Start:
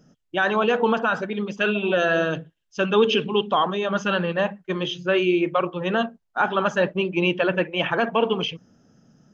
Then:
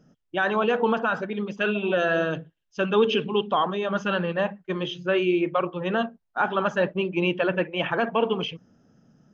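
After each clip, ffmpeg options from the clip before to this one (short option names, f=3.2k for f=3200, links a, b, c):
-af "highshelf=f=5.6k:g=-10,volume=-2dB"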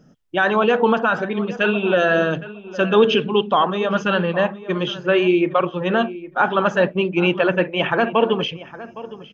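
-filter_complex "[0:a]asplit=2[a][b];[b]adelay=812,lowpass=f=2.4k:p=1,volume=-16dB,asplit=2[c][d];[d]adelay=812,lowpass=f=2.4k:p=1,volume=0.16[e];[a][c][e]amix=inputs=3:normalize=0,volume=6dB"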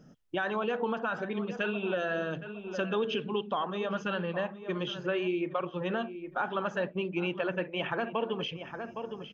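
-af "acompressor=threshold=-30dB:ratio=2.5,volume=-3.5dB"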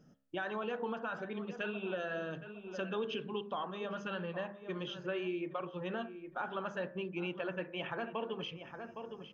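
-af "bandreject=f=67.04:t=h:w=4,bandreject=f=134.08:t=h:w=4,bandreject=f=201.12:t=h:w=4,bandreject=f=268.16:t=h:w=4,bandreject=f=335.2:t=h:w=4,bandreject=f=402.24:t=h:w=4,bandreject=f=469.28:t=h:w=4,bandreject=f=536.32:t=h:w=4,bandreject=f=603.36:t=h:w=4,bandreject=f=670.4:t=h:w=4,bandreject=f=737.44:t=h:w=4,bandreject=f=804.48:t=h:w=4,bandreject=f=871.52:t=h:w=4,bandreject=f=938.56:t=h:w=4,bandreject=f=1.0056k:t=h:w=4,bandreject=f=1.07264k:t=h:w=4,bandreject=f=1.13968k:t=h:w=4,bandreject=f=1.20672k:t=h:w=4,bandreject=f=1.27376k:t=h:w=4,bandreject=f=1.3408k:t=h:w=4,bandreject=f=1.40784k:t=h:w=4,bandreject=f=1.47488k:t=h:w=4,bandreject=f=1.54192k:t=h:w=4,bandreject=f=1.60896k:t=h:w=4,bandreject=f=1.676k:t=h:w=4,bandreject=f=1.74304k:t=h:w=4,bandreject=f=1.81008k:t=h:w=4,bandreject=f=1.87712k:t=h:w=4,bandreject=f=1.94416k:t=h:w=4,bandreject=f=2.0112k:t=h:w=4,bandreject=f=2.07824k:t=h:w=4,volume=-6.5dB"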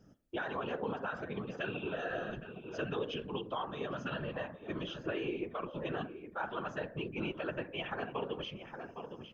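-af "afftfilt=real='hypot(re,im)*cos(2*PI*random(0))':imag='hypot(re,im)*sin(2*PI*random(1))':win_size=512:overlap=0.75,volume=6.5dB"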